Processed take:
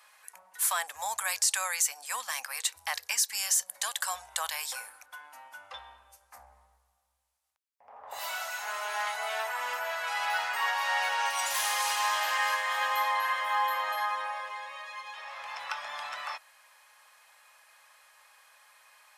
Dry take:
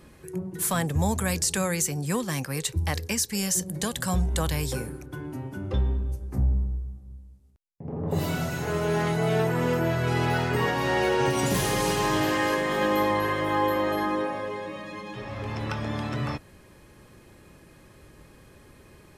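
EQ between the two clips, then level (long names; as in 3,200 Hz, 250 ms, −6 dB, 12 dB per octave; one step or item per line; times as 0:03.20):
inverse Chebyshev high-pass filter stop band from 390 Hz, stop band 40 dB
0.0 dB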